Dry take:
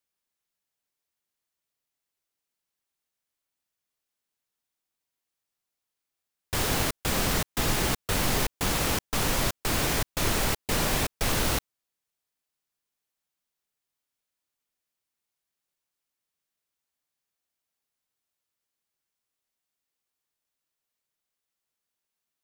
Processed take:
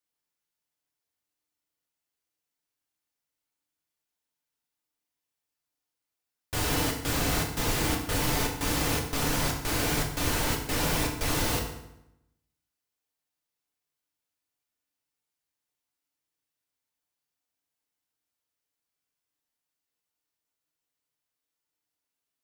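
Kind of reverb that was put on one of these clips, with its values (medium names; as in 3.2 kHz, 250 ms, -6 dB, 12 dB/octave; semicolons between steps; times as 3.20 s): FDN reverb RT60 0.84 s, low-frequency decay 1.2×, high-frequency decay 0.8×, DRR -0.5 dB; trim -4.5 dB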